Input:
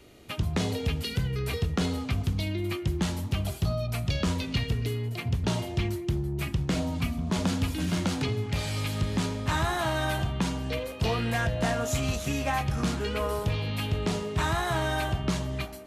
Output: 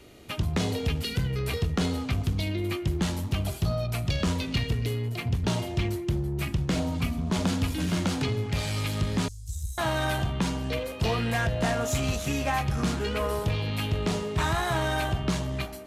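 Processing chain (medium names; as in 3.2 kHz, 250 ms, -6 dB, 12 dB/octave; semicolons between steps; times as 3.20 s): 9.28–9.78 s: inverse Chebyshev band-stop 350–1500 Hz, stop band 80 dB; in parallel at -5 dB: one-sided clip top -39 dBFS; on the sum: trim -1.5 dB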